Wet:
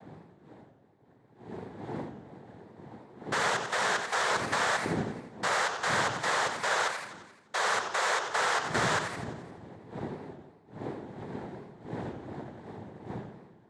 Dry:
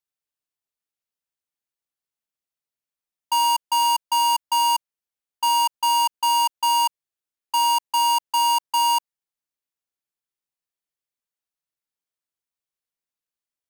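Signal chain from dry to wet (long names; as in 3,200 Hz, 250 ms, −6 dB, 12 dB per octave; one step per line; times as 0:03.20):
wind on the microphone 400 Hz −32 dBFS
cochlear-implant simulation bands 6
feedback echo with a swinging delay time 87 ms, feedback 57%, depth 220 cents, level −7.5 dB
level −9 dB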